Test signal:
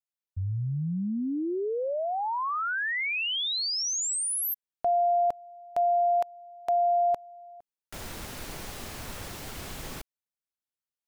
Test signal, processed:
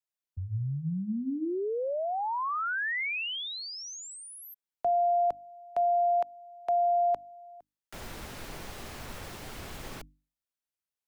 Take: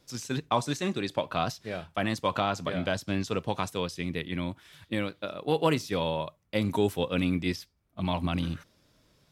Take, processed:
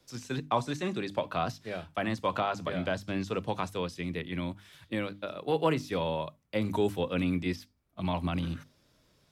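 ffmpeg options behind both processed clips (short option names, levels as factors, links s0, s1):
-filter_complex "[0:a]acrossover=split=2800[s0][s1];[s1]acompressor=threshold=0.00794:ratio=4:attack=1:release=60[s2];[s0][s2]amix=inputs=2:normalize=0,bandreject=f=50:t=h:w=6,bandreject=f=100:t=h:w=6,bandreject=f=150:t=h:w=6,bandreject=f=200:t=h:w=6,bandreject=f=250:t=h:w=6,bandreject=f=300:t=h:w=6,acrossover=split=120|420|6000[s3][s4][s5][s6];[s6]alimiter=level_in=8.41:limit=0.0631:level=0:latency=1,volume=0.119[s7];[s3][s4][s5][s7]amix=inputs=4:normalize=0,volume=0.841"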